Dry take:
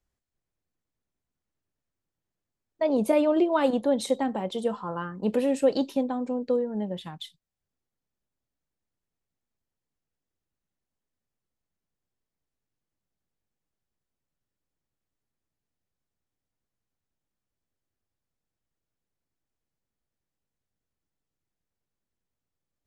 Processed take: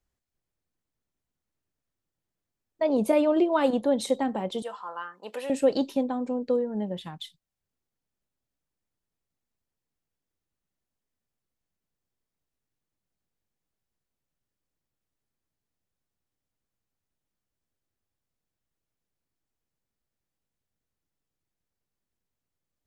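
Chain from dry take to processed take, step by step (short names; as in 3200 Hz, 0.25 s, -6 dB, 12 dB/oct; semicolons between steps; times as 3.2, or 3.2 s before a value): 4.62–5.5 HPF 820 Hz 12 dB/oct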